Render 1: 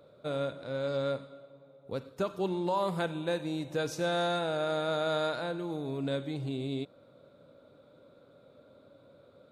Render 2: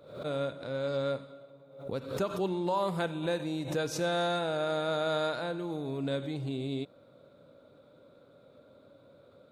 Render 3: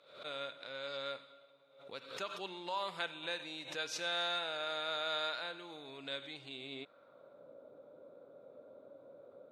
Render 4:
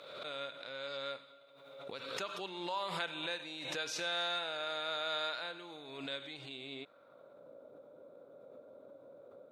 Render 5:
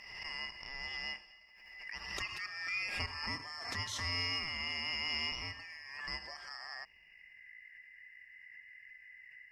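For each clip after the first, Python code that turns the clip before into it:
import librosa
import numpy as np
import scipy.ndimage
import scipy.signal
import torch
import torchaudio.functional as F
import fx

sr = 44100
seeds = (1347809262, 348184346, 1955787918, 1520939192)

y1 = fx.pre_swell(x, sr, db_per_s=92.0)
y2 = fx.filter_sweep_bandpass(y1, sr, from_hz=2900.0, to_hz=570.0, start_s=6.52, end_s=7.54, q=1.1)
y2 = y2 * 10.0 ** (3.0 / 20.0)
y3 = fx.pre_swell(y2, sr, db_per_s=43.0)
y4 = fx.band_shuffle(y3, sr, order='2143')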